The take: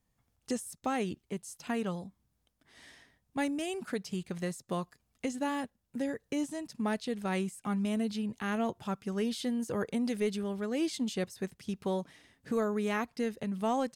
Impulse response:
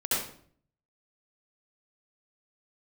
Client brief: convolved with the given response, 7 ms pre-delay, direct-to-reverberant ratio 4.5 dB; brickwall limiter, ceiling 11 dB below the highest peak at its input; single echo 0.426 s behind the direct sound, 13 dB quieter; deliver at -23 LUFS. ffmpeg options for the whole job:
-filter_complex "[0:a]alimiter=level_in=7dB:limit=-24dB:level=0:latency=1,volume=-7dB,aecho=1:1:426:0.224,asplit=2[a][b];[1:a]atrim=start_sample=2205,adelay=7[c];[b][c]afir=irnorm=-1:irlink=0,volume=-14dB[d];[a][d]amix=inputs=2:normalize=0,volume=16dB"

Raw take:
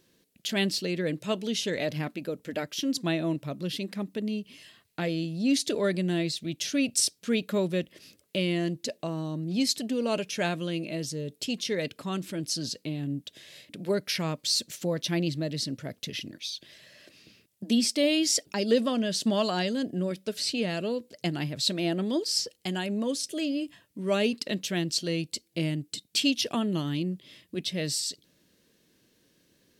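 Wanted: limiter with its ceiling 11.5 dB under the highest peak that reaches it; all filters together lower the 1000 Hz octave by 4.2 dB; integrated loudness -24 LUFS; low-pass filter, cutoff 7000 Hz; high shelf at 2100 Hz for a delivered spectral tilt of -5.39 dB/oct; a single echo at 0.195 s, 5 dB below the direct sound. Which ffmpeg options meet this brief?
-af "lowpass=7k,equalizer=f=1k:t=o:g=-4.5,highshelf=f=2.1k:g=-7.5,alimiter=level_in=0.5dB:limit=-24dB:level=0:latency=1,volume=-0.5dB,aecho=1:1:195:0.562,volume=9dB"

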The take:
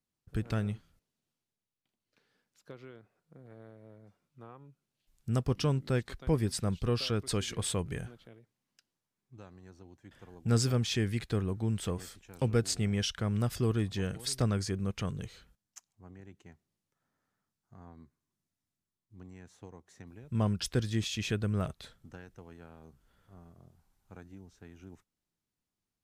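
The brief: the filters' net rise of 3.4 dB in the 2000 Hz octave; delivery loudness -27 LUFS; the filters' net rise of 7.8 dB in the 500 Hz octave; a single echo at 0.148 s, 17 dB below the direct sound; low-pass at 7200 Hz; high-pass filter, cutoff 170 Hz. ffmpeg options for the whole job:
-af "highpass=170,lowpass=7.2k,equalizer=f=500:t=o:g=9,equalizer=f=2k:t=o:g=4,aecho=1:1:148:0.141,volume=4dB"

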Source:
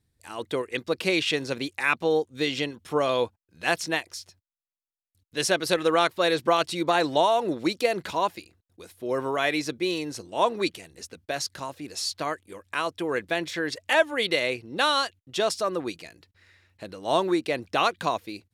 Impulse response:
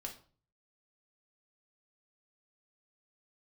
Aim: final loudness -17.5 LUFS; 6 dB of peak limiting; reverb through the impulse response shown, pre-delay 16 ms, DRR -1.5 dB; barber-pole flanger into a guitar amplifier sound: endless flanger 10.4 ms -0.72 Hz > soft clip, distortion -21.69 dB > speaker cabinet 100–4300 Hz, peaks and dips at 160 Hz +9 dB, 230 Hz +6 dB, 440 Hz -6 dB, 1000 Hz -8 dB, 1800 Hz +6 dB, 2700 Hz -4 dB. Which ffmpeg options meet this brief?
-filter_complex "[0:a]alimiter=limit=-12.5dB:level=0:latency=1,asplit=2[a][b];[1:a]atrim=start_sample=2205,adelay=16[c];[b][c]afir=irnorm=-1:irlink=0,volume=4dB[d];[a][d]amix=inputs=2:normalize=0,asplit=2[e][f];[f]adelay=10.4,afreqshift=-0.72[g];[e][g]amix=inputs=2:normalize=1,asoftclip=threshold=-13.5dB,highpass=100,equalizer=f=160:t=q:w=4:g=9,equalizer=f=230:t=q:w=4:g=6,equalizer=f=440:t=q:w=4:g=-6,equalizer=f=1k:t=q:w=4:g=-8,equalizer=f=1.8k:t=q:w=4:g=6,equalizer=f=2.7k:t=q:w=4:g=-4,lowpass=f=4.3k:w=0.5412,lowpass=f=4.3k:w=1.3066,volume=10.5dB"

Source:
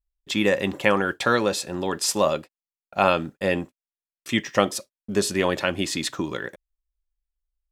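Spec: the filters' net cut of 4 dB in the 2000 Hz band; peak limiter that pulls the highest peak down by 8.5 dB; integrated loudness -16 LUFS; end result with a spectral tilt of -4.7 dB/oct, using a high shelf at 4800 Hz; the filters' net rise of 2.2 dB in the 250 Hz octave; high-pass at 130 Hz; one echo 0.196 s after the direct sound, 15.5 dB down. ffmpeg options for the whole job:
-af "highpass=130,equalizer=f=250:t=o:g=3.5,equalizer=f=2k:t=o:g=-4,highshelf=f=4.8k:g=-7.5,alimiter=limit=-11dB:level=0:latency=1,aecho=1:1:196:0.168,volume=10dB"

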